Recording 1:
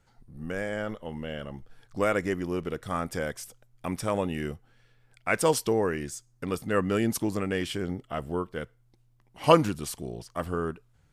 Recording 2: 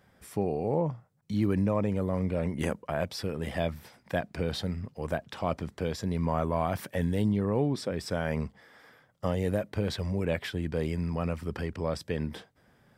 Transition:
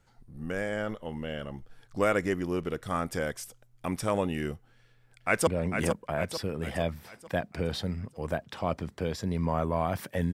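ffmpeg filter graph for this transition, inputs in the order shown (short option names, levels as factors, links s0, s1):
-filter_complex "[0:a]apad=whole_dur=10.33,atrim=end=10.33,atrim=end=5.472[s0];[1:a]atrim=start=2.268:end=7.13[s1];[s0][s1]acrossfade=d=0.004:c1=hsin:c2=hsin,asplit=2[s2][s3];[s3]afade=t=in:st=4.75:d=0.01,afade=t=out:st=5.47:d=0.01,aecho=0:1:450|900|1350|1800|2250|2700:0.473151|0.236576|0.118288|0.0591439|0.029572|0.014786[s4];[s2][s4]amix=inputs=2:normalize=0"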